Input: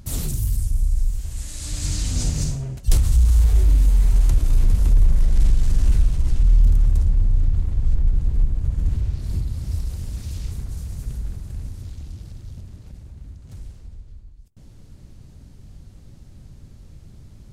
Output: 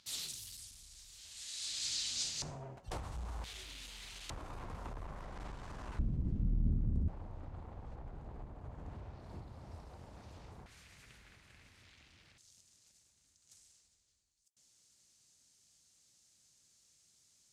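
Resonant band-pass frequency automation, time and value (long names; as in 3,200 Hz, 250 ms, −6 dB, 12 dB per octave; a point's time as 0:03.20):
resonant band-pass, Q 1.8
3,900 Hz
from 0:02.42 860 Hz
from 0:03.44 3,300 Hz
from 0:04.30 980 Hz
from 0:05.99 220 Hz
from 0:07.08 820 Hz
from 0:10.66 2,200 Hz
from 0:12.38 6,900 Hz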